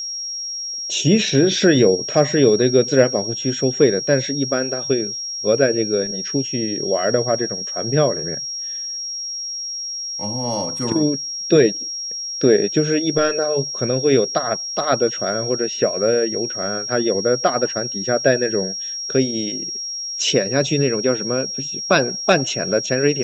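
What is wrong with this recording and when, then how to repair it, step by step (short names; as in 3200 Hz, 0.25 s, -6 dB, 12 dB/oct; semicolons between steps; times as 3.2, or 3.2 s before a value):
tone 5600 Hz -25 dBFS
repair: notch 5600 Hz, Q 30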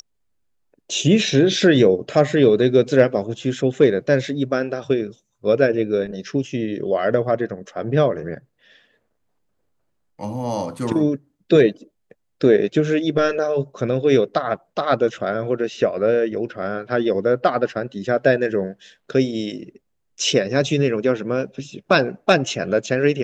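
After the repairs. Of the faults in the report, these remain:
none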